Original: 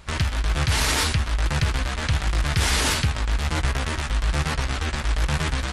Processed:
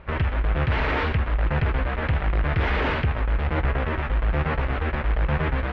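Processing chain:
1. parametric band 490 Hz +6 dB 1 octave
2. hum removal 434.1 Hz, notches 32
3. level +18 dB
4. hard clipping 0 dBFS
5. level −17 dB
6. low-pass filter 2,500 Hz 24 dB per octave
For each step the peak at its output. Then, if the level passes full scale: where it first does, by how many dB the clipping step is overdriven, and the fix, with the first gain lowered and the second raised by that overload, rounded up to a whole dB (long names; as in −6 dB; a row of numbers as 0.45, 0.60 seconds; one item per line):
−8.5, −8.5, +9.5, 0.0, −17.0, −15.5 dBFS
step 3, 9.5 dB
step 3 +8 dB, step 5 −7 dB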